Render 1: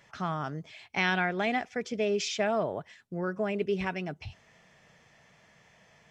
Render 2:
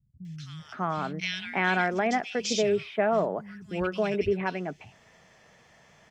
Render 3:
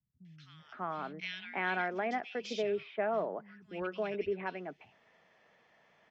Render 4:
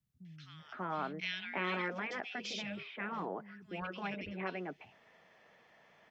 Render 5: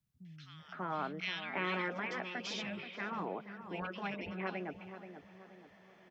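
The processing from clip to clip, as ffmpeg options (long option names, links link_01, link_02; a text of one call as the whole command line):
ffmpeg -i in.wav -filter_complex "[0:a]acrossover=split=150|2400[link_01][link_02][link_03];[link_03]adelay=250[link_04];[link_02]adelay=590[link_05];[link_01][link_05][link_04]amix=inputs=3:normalize=0,volume=4dB" out.wav
ffmpeg -i in.wav -filter_complex "[0:a]acrossover=split=210 4300:gain=0.224 1 0.0891[link_01][link_02][link_03];[link_01][link_02][link_03]amix=inputs=3:normalize=0,volume=-7.5dB" out.wav
ffmpeg -i in.wav -af "afftfilt=real='re*lt(hypot(re,im),0.0794)':imag='im*lt(hypot(re,im),0.0794)':win_size=1024:overlap=0.75,volume=2.5dB" out.wav
ffmpeg -i in.wav -filter_complex "[0:a]asplit=2[link_01][link_02];[link_02]adelay=480,lowpass=frequency=1400:poles=1,volume=-9.5dB,asplit=2[link_03][link_04];[link_04]adelay=480,lowpass=frequency=1400:poles=1,volume=0.47,asplit=2[link_05][link_06];[link_06]adelay=480,lowpass=frequency=1400:poles=1,volume=0.47,asplit=2[link_07][link_08];[link_08]adelay=480,lowpass=frequency=1400:poles=1,volume=0.47,asplit=2[link_09][link_10];[link_10]adelay=480,lowpass=frequency=1400:poles=1,volume=0.47[link_11];[link_01][link_03][link_05][link_07][link_09][link_11]amix=inputs=6:normalize=0" out.wav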